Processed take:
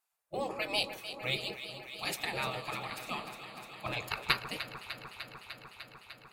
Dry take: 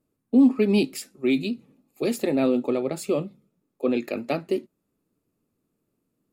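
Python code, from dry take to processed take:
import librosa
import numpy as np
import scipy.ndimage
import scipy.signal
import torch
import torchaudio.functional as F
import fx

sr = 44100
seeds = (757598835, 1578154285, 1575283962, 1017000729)

y = fx.transient(x, sr, attack_db=12, sustain_db=0, at=(3.86, 4.34))
y = fx.spec_gate(y, sr, threshold_db=-20, keep='weak')
y = fx.echo_alternate(y, sr, ms=150, hz=1300.0, feedback_pct=89, wet_db=-10.0)
y = y * 10.0 ** (2.5 / 20.0)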